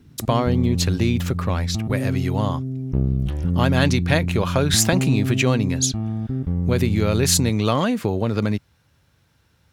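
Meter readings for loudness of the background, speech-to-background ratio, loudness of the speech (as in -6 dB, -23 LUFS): -25.0 LUFS, 3.0 dB, -22.0 LUFS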